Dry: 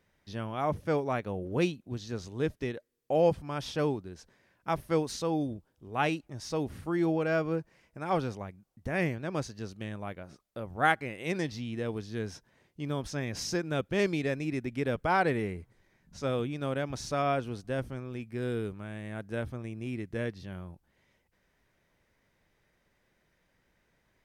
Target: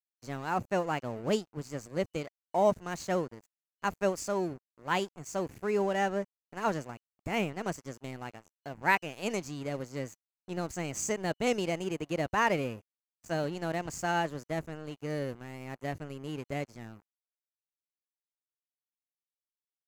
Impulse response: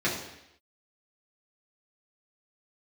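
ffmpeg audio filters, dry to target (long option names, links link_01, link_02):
-af "asetrate=53802,aresample=44100,aeval=exprs='sgn(val(0))*max(abs(val(0))-0.00473,0)':channel_layout=same,superequalizer=13b=0.562:15b=1.78"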